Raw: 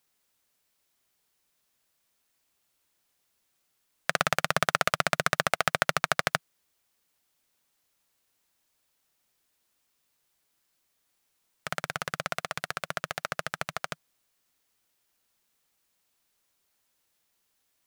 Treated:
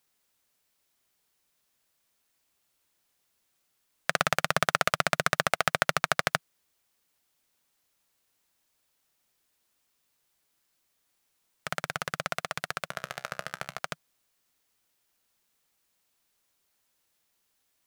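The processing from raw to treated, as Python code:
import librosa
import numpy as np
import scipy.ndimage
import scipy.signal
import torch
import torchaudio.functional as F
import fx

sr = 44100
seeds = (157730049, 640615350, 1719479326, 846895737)

y = fx.comb_fb(x, sr, f0_hz=65.0, decay_s=0.3, harmonics='all', damping=0.0, mix_pct=50, at=(12.88, 13.79))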